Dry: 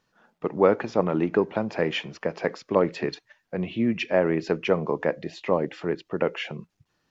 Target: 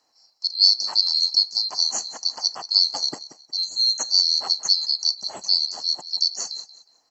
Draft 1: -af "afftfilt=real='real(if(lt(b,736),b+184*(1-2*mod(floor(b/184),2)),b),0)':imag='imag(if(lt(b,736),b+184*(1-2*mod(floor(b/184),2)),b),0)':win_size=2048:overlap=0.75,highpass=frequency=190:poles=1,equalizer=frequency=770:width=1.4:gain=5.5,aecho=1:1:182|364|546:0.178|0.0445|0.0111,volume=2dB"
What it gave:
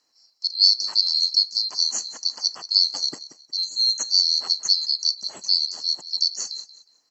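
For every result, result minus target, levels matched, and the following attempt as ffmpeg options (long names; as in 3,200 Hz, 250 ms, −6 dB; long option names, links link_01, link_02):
1,000 Hz band −7.5 dB; 125 Hz band −3.0 dB
-af "afftfilt=real='real(if(lt(b,736),b+184*(1-2*mod(floor(b/184),2)),b),0)':imag='imag(if(lt(b,736),b+184*(1-2*mod(floor(b/184),2)),b),0)':win_size=2048:overlap=0.75,highpass=frequency=190:poles=1,equalizer=frequency=770:width=1.4:gain=16,aecho=1:1:182|364|546:0.178|0.0445|0.0111,volume=2dB"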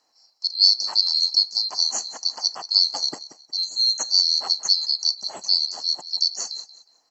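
125 Hz band −3.0 dB
-af "afftfilt=real='real(if(lt(b,736),b+184*(1-2*mod(floor(b/184),2)),b),0)':imag='imag(if(lt(b,736),b+184*(1-2*mod(floor(b/184),2)),b),0)':win_size=2048:overlap=0.75,highpass=frequency=77:poles=1,equalizer=frequency=770:width=1.4:gain=16,aecho=1:1:182|364|546:0.178|0.0445|0.0111,volume=2dB"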